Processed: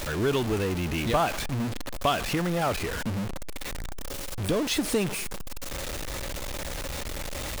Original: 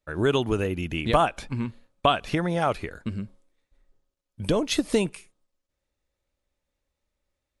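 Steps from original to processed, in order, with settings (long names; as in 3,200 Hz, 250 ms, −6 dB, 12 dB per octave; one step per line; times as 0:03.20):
converter with a step at zero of −20.5 dBFS
level −6 dB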